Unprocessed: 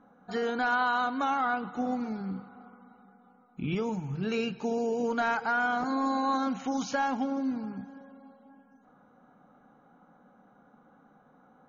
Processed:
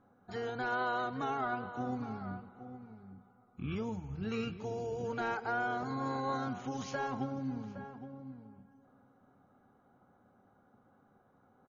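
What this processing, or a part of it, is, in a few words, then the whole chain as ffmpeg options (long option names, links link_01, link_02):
octave pedal: -filter_complex "[0:a]asplit=2[link_01][link_02];[link_02]asetrate=22050,aresample=44100,atempo=2,volume=-6dB[link_03];[link_01][link_03]amix=inputs=2:normalize=0,asplit=2[link_04][link_05];[link_05]adelay=816.3,volume=-11dB,highshelf=frequency=4000:gain=-18.4[link_06];[link_04][link_06]amix=inputs=2:normalize=0,volume=-8dB"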